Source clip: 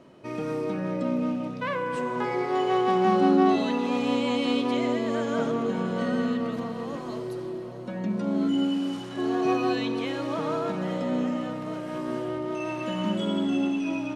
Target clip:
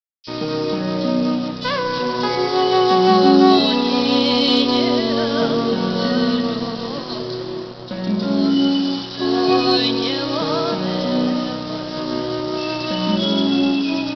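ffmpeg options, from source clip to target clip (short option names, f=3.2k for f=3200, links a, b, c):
-filter_complex "[0:a]aresample=11025,aeval=exprs='sgn(val(0))*max(abs(val(0))-0.0075,0)':c=same,aresample=44100,acontrast=42,aexciter=amount=9.7:drive=2.6:freq=3.4k,acrossover=split=3300[a][b];[a]adelay=30[c];[c][b]amix=inputs=2:normalize=0,volume=3.5dB"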